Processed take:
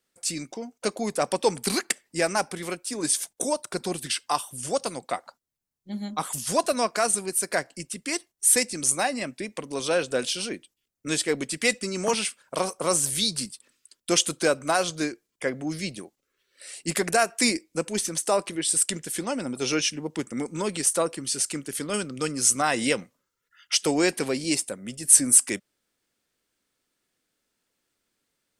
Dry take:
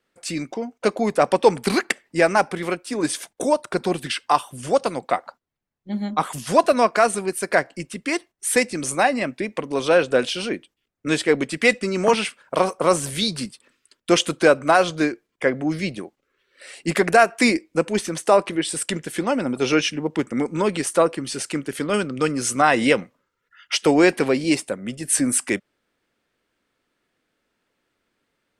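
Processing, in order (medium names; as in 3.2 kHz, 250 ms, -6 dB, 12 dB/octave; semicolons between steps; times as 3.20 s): tone controls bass +2 dB, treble +14 dB; trim -8 dB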